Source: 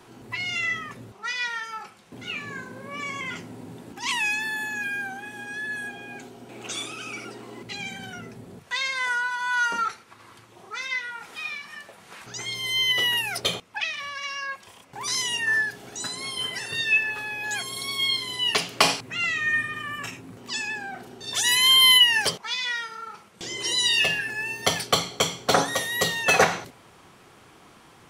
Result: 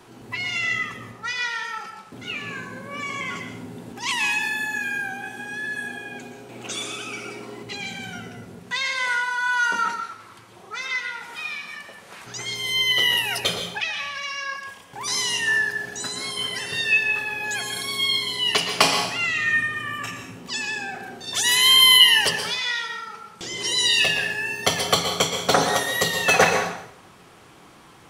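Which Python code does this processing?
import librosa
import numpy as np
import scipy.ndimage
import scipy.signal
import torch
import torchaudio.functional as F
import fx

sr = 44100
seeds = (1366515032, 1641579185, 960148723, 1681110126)

y = fx.rev_plate(x, sr, seeds[0], rt60_s=0.68, hf_ratio=0.85, predelay_ms=105, drr_db=5.5)
y = F.gain(torch.from_numpy(y), 1.5).numpy()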